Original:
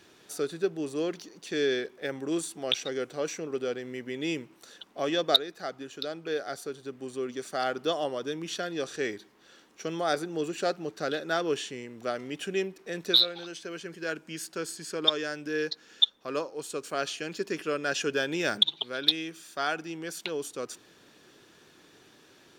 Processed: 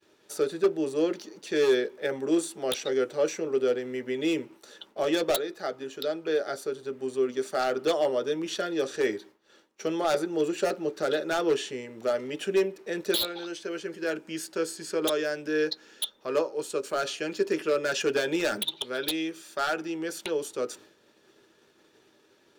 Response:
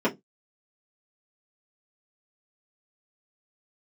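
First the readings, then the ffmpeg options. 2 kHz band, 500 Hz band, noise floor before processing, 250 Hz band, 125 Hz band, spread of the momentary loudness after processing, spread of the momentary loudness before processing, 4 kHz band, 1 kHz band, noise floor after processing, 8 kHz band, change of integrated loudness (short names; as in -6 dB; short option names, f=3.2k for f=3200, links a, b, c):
+0.5 dB, +5.0 dB, -58 dBFS, +4.0 dB, -1.5 dB, 8 LU, 13 LU, -6.5 dB, +1.0 dB, -63 dBFS, +2.0 dB, +1.5 dB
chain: -filter_complex "[0:a]agate=range=-33dB:threshold=-50dB:ratio=3:detection=peak,aeval=exprs='0.0841*(abs(mod(val(0)/0.0841+3,4)-2)-1)':c=same,asplit=2[a][b];[1:a]atrim=start_sample=2205,asetrate=61740,aresample=44100[c];[b][c]afir=irnorm=-1:irlink=0,volume=-16dB[d];[a][d]amix=inputs=2:normalize=0"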